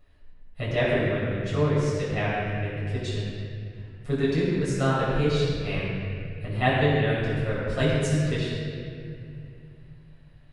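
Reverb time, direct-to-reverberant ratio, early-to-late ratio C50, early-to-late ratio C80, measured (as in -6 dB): 2.4 s, -10.0 dB, -2.0 dB, -1.0 dB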